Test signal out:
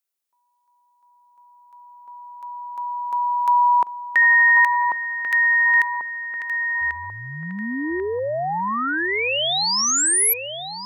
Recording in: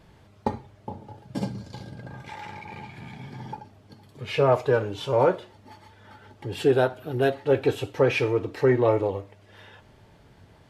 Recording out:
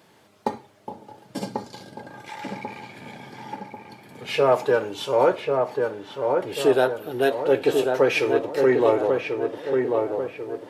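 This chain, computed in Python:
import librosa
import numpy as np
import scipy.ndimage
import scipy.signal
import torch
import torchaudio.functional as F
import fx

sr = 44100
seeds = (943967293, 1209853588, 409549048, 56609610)

y = scipy.signal.sosfilt(scipy.signal.butter(2, 250.0, 'highpass', fs=sr, output='sos'), x)
y = fx.high_shelf(y, sr, hz=6700.0, db=8.5)
y = fx.echo_filtered(y, sr, ms=1091, feedback_pct=52, hz=1600.0, wet_db=-3.5)
y = y * librosa.db_to_amplitude(2.0)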